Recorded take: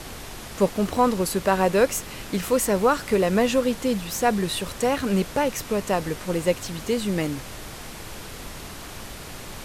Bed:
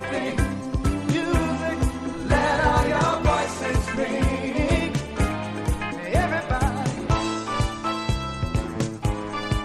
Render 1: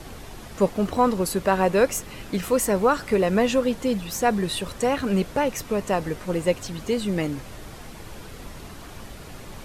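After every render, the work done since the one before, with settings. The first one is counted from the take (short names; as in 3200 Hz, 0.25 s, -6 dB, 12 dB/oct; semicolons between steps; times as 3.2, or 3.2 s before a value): denoiser 7 dB, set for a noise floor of -39 dBFS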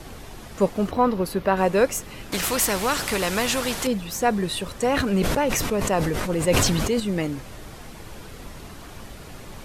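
0.91–1.57 bell 8000 Hz -13.5 dB 0.95 oct; 2.32–3.87 spectral compressor 2:1; 4.85–7 sustainer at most 21 dB/s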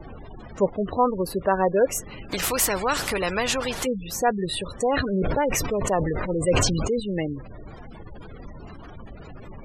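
spectral gate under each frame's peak -20 dB strong; dynamic EQ 220 Hz, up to -5 dB, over -37 dBFS, Q 2.3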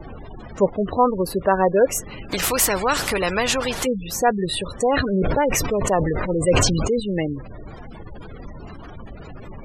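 gain +3.5 dB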